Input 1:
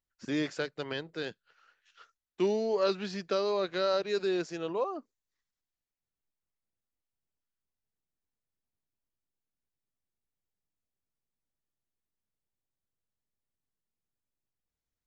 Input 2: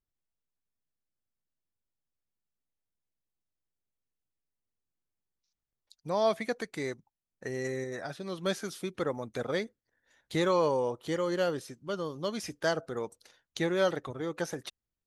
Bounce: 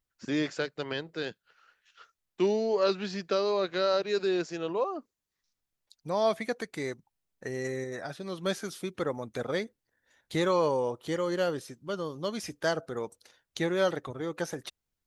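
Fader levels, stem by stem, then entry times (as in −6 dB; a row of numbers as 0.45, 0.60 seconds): +2.0, +0.5 decibels; 0.00, 0.00 seconds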